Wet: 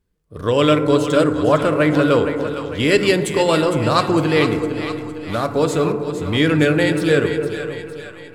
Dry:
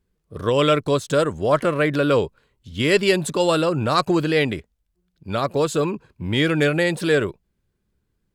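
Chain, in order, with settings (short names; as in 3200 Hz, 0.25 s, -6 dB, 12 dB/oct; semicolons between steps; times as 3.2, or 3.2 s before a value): 4.48–5.47 CVSD 64 kbps; in parallel at -12 dB: backlash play -21 dBFS; on the sum: split-band echo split 630 Hz, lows 0.273 s, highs 0.458 s, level -9.5 dB; FDN reverb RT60 2.1 s, low-frequency decay 1.35×, high-frequency decay 0.25×, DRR 8 dB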